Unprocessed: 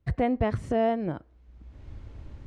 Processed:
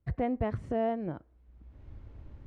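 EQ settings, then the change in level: treble shelf 3.4 kHz -11 dB; -5.0 dB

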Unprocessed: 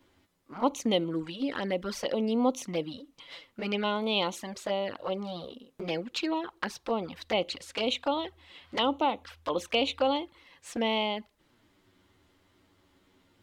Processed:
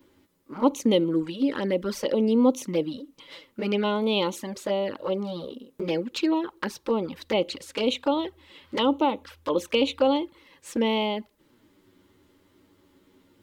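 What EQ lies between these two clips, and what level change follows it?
Butterworth band-stop 710 Hz, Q 5.8; peaking EQ 320 Hz +8 dB 2.1 oct; treble shelf 11 kHz +11 dB; 0.0 dB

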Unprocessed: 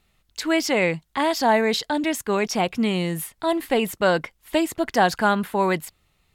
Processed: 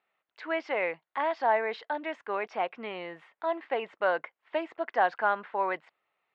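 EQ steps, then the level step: Butterworth band-pass 1.1 kHz, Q 0.6; distance through air 120 m; -5.0 dB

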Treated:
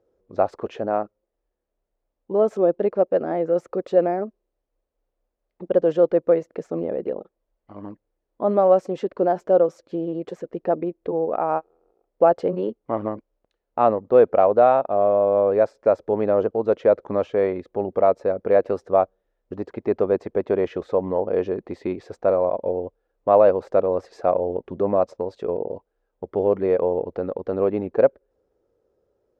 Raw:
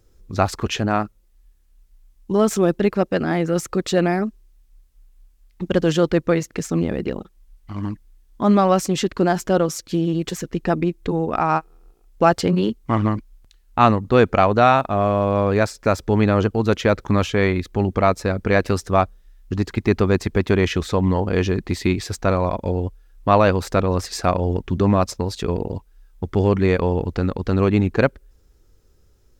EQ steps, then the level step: band-pass filter 550 Hz, Q 2.7; +4.5 dB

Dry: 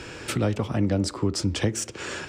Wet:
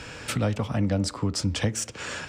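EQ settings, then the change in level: peaking EQ 360 Hz -14.5 dB 0.28 oct; 0.0 dB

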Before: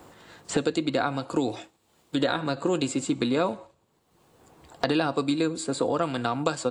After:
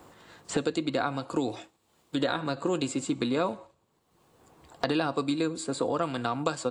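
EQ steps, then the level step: peaking EQ 1.1 kHz +2.5 dB 0.28 oct; -3.0 dB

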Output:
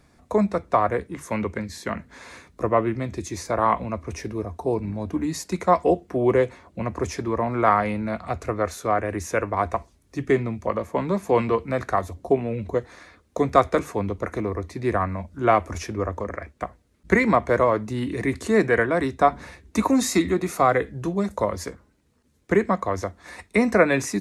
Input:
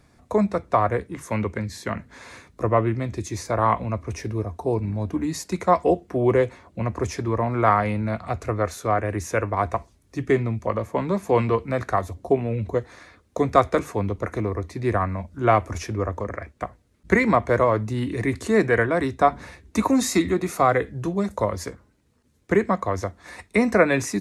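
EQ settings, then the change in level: peaking EQ 110 Hz -9.5 dB 0.22 oct; 0.0 dB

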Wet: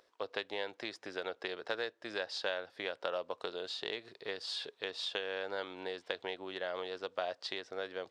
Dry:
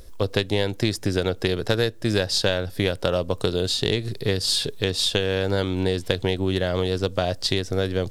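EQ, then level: high-pass 780 Hz 12 dB/octave; tape spacing loss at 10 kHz 27 dB; -5.0 dB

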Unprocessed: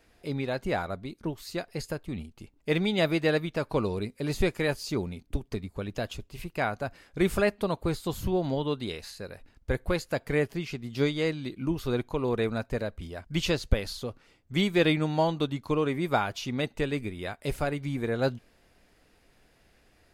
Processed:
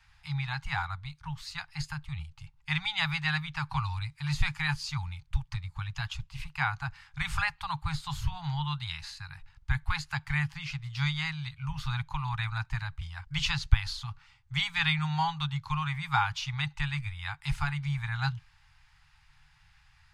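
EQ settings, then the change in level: Chebyshev band-stop 150–820 Hz, order 5; tape spacing loss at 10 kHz 21 dB; treble shelf 2.8 kHz +10 dB; +4.0 dB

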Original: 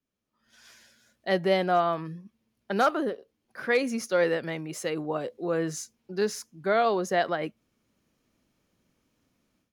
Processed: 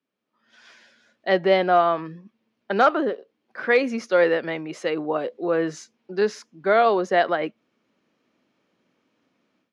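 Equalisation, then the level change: band-pass 240–3600 Hz; +6.0 dB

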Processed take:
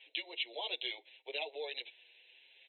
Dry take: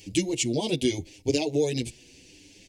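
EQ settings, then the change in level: Bessel high-pass 900 Hz, order 8; brick-wall FIR low-pass 4.1 kHz; -3.5 dB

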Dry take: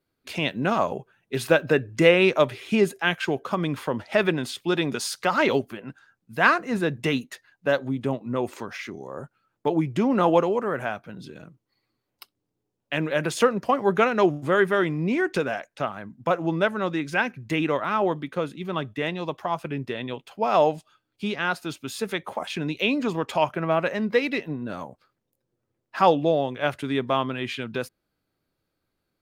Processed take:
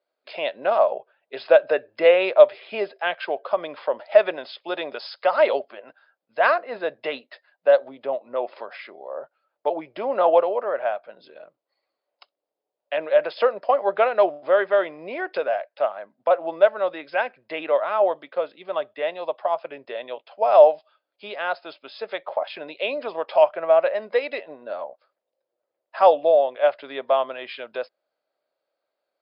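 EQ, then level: resonant high-pass 600 Hz, resonance Q 4.9; brick-wall FIR low-pass 5.2 kHz; -4.0 dB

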